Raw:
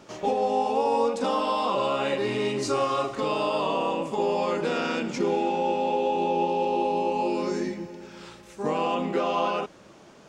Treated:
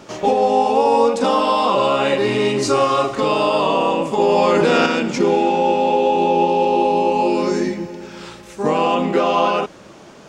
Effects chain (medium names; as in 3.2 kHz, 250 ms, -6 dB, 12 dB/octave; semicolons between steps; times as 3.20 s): 4.20–4.86 s: level flattener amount 100%; trim +9 dB